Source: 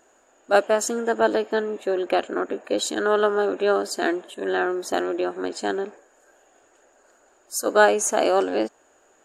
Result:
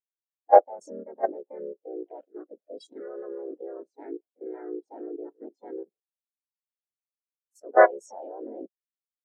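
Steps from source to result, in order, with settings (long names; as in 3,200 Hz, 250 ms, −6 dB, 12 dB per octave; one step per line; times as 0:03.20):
pitch-shifted copies added −3 semitones −2 dB, +3 semitones −2 dB, +5 semitones −4 dB
output level in coarse steps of 12 dB
every bin expanded away from the loudest bin 2.5 to 1
level −1.5 dB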